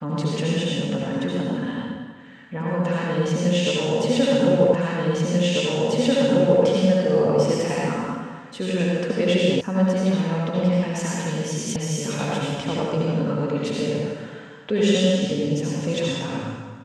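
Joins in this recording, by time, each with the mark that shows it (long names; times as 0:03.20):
0:04.74: the same again, the last 1.89 s
0:09.61: cut off before it has died away
0:11.76: cut off before it has died away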